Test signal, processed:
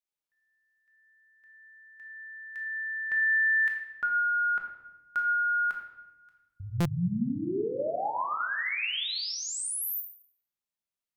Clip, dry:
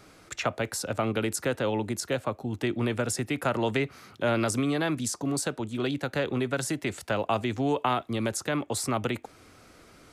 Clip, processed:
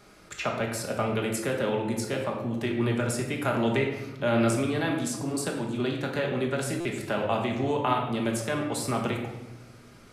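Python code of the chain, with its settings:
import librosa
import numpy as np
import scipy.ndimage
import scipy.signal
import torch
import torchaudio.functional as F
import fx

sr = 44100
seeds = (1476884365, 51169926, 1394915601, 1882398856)

y = fx.dynamic_eq(x, sr, hz=6000.0, q=1.7, threshold_db=-46.0, ratio=4.0, max_db=-4)
y = fx.room_shoebox(y, sr, seeds[0], volume_m3=480.0, walls='mixed', distance_m=1.3)
y = fx.buffer_glitch(y, sr, at_s=(6.8,), block=256, repeats=8)
y = y * 10.0 ** (-2.5 / 20.0)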